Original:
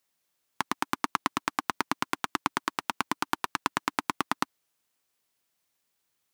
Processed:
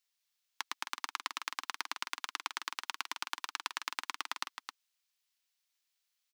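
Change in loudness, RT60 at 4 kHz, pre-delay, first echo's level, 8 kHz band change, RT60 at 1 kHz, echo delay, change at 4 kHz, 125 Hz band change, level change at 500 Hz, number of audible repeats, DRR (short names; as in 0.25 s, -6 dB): -8.0 dB, none, none, -7.5 dB, -4.5 dB, none, 0.265 s, -2.0 dB, under -35 dB, -18.5 dB, 1, none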